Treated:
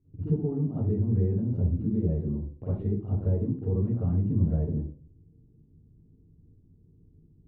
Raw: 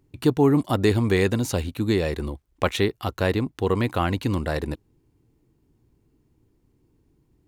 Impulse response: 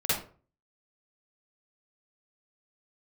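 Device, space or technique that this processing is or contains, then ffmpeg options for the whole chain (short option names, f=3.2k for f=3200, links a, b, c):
television next door: -filter_complex "[0:a]acompressor=threshold=-29dB:ratio=4,lowpass=260[a];[1:a]atrim=start_sample=2205[b];[a][b]afir=irnorm=-1:irlink=0,volume=-3.5dB"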